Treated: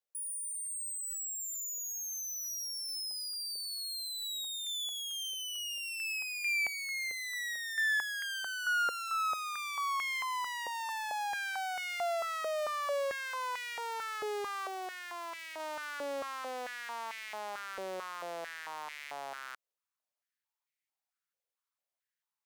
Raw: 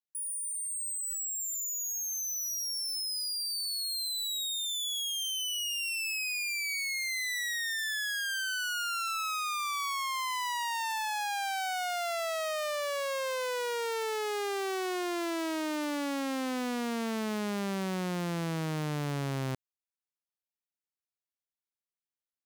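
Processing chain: limiter -35.5 dBFS, peak gain reduction 7.5 dB; 14.67–15.6 hard clip -38.5 dBFS, distortion -29 dB; stepped high-pass 4.5 Hz 500–2100 Hz

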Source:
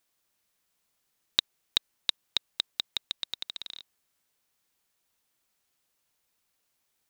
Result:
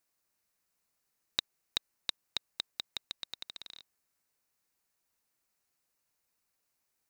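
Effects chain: bell 3300 Hz -8 dB 0.36 oct; gain -4 dB

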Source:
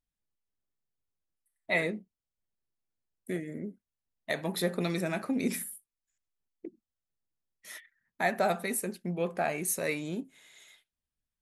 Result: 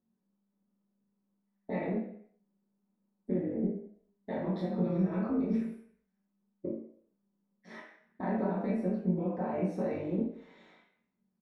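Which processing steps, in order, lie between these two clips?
LPF 1900 Hz 12 dB/oct; bell 220 Hz +7 dB 1.1 oct; limiter -25 dBFS, peak gain reduction 12 dB; compressor 3:1, threshold -42 dBFS, peak gain reduction 10.5 dB; flange 0.3 Hz, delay 7.9 ms, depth 7.4 ms, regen -75%; AM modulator 200 Hz, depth 85%; early reflections 22 ms -3 dB, 57 ms -9.5 dB; reverb RT60 0.60 s, pre-delay 3 ms, DRR -8 dB

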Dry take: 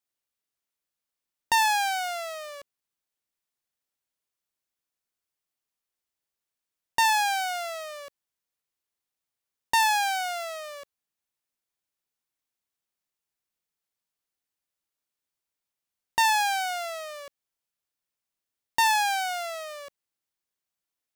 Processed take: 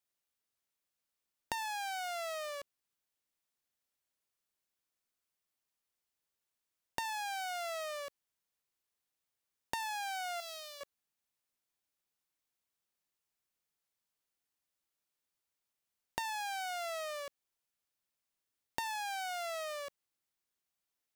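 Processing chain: 10.4–10.81 graphic EQ 125/250/500/1000/2000/4000/8000 Hz -4/+8/-12/-11/-11/+5/-5 dB; compressor 20:1, threshold -35 dBFS, peak gain reduction 17 dB; gain -1 dB

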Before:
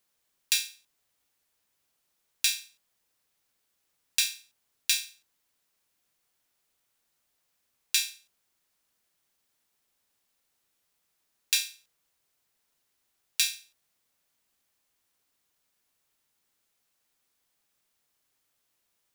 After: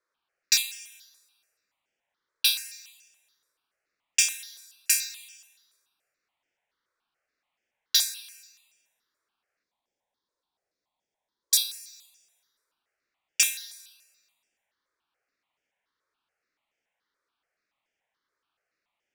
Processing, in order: spectral gain 9.63–11.75, 1100–3200 Hz -10 dB; low-pass opened by the level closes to 2300 Hz, open at -28.5 dBFS; tone controls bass -14 dB, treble +5 dB; plate-style reverb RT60 1.3 s, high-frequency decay 0.95×, DRR 11 dB; step phaser 7 Hz 780–4000 Hz; gain +4.5 dB

